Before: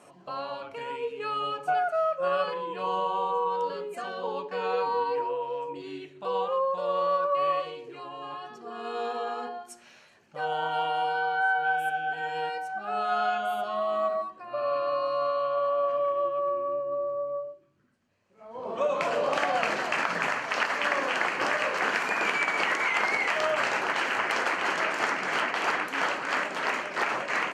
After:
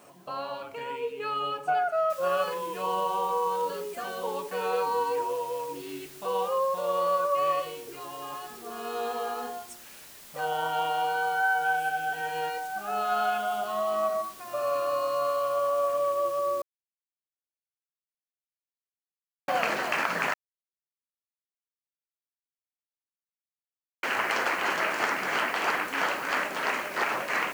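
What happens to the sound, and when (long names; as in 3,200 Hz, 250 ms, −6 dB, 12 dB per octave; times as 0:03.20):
0:02.10: noise floor change −65 dB −49 dB
0:16.62–0:19.48: silence
0:20.34–0:24.03: silence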